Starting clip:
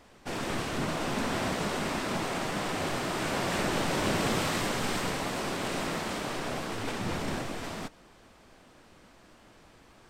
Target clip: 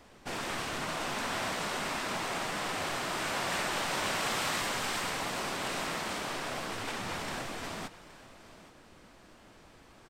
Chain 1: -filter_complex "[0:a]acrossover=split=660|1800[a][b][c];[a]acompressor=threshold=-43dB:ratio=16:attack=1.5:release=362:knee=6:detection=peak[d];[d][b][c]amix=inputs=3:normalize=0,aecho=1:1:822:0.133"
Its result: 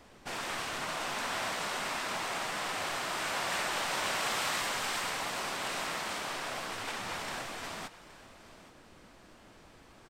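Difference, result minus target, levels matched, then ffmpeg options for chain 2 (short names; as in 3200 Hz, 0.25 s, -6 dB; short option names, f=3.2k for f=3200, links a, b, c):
compressor: peak gain reduction +6 dB
-filter_complex "[0:a]acrossover=split=660|1800[a][b][c];[a]acompressor=threshold=-36.5dB:ratio=16:attack=1.5:release=362:knee=6:detection=peak[d];[d][b][c]amix=inputs=3:normalize=0,aecho=1:1:822:0.133"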